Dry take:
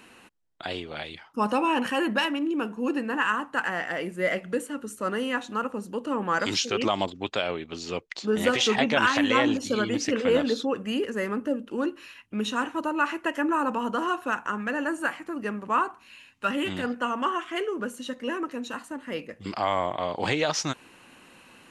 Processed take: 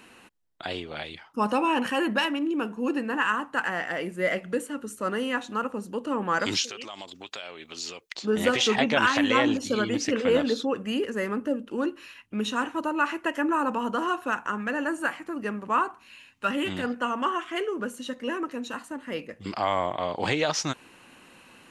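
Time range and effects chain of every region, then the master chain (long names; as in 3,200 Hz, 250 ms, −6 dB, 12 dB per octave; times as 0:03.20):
0:06.64–0:08.15: downward compressor, threshold −35 dBFS + spectral tilt +3 dB per octave
whole clip: no processing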